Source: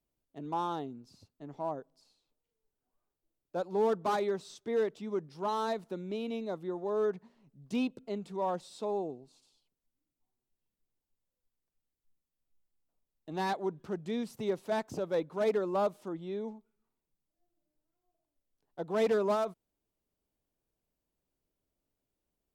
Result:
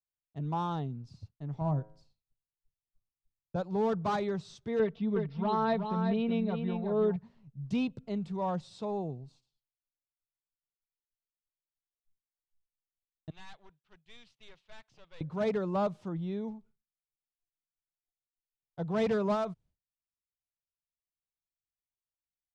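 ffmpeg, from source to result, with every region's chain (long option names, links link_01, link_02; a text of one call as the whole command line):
ffmpeg -i in.wav -filter_complex "[0:a]asettb=1/sr,asplit=3[link_01][link_02][link_03];[link_01]atrim=end=1.614[link_04];[link_02]atrim=start=1.61:end=3.56,asetpts=PTS-STARTPTS,afade=type=in:duration=0.004:curve=qsin,afade=type=out:start_time=1.946:duration=0.004:curve=qsin,bass=frequency=250:gain=9,treble=frequency=4000:gain=-1,bandreject=frequency=106.6:width_type=h:width=4,bandreject=frequency=213.2:width_type=h:width=4,bandreject=frequency=319.8:width_type=h:width=4,bandreject=frequency=426.4:width_type=h:width=4,bandreject=frequency=533:width_type=h:width=4,bandreject=frequency=639.6:width_type=h:width=4,bandreject=frequency=746.2:width_type=h:width=4,bandreject=frequency=852.8:width_type=h:width=4,bandreject=frequency=959.4:width_type=h:width=4,bandreject=frequency=1066:width_type=h:width=4,bandreject=frequency=1172.6:width_type=h:width=4,bandreject=frequency=1279.2:width_type=h:width=4,bandreject=frequency=1385.8:width_type=h:width=4,bandreject=frequency=1492.4:width_type=h:width=4,bandreject=frequency=1599:width_type=h:width=4,bandreject=frequency=1705.6:width_type=h:width=4,bandreject=frequency=1812.2:width_type=h:width=4,bandreject=frequency=1918.8:width_type=h:width=4,bandreject=frequency=2025.4:width_type=h:width=4,bandreject=frequency=2132:width_type=h:width=4,bandreject=frequency=2238.6:width_type=h:width=4,bandreject=frequency=2345.2:width_type=h:width=4,bandreject=frequency=2451.8:width_type=h:width=4[link_05];[link_03]atrim=start=3.556[link_06];[link_04][link_05]acrossfade=duration=0.004:curve1=hsin:curve2=qsin[link_07];[link_07][link_06]acrossfade=duration=0.004:curve1=qsin:curve2=hsin,asettb=1/sr,asplit=3[link_08][link_09][link_10];[link_08]atrim=end=4.794[link_11];[link_09]atrim=start=4.79:end=7.16,asetpts=PTS-STARTPTS,afade=type=in:duration=0.004:curve=qsin,afade=type=out:start_time=2.366:duration=0.004:curve=qsin,lowpass=frequency=4000:width=0.5412,lowpass=frequency=4000:width=1.3066,aecho=1:1:4.4:0.74,atrim=end_sample=104517,aecho=1:1:370:0.473,atrim=end_sample=104517[link_12];[link_10]atrim=start=7.156[link_13];[link_11][link_12]acrossfade=duration=0.004:curve1=hsin:curve2=qsin[link_14];[link_14][link_13]acrossfade=duration=0.004:curve1=qsin:curve2=hsin,asettb=1/sr,asplit=3[link_15][link_16][link_17];[link_15]atrim=end=13.304[link_18];[link_16]atrim=start=13.3:end=15.21,asetpts=PTS-STARTPTS,afade=type=in:duration=0.004:curve=qsin,afade=type=out:start_time=1.906:duration=0.004:curve=qsin,bandpass=frequency=3000:width_type=q:width=1.8,aeval=exprs='(tanh(251*val(0)+0.6)-tanh(0.6))/251':channel_layout=same[link_19];[link_17]atrim=start=15.206[link_20];[link_18][link_19]acrossfade=duration=0.004:curve1=hsin:curve2=qsin[link_21];[link_21][link_20]acrossfade=duration=0.004:curve1=qsin:curve2=hsin,agate=range=-33dB:threshold=-59dB:ratio=3:detection=peak,lowpass=5900,lowshelf=frequency=200:width_type=q:width=1.5:gain=13" out.wav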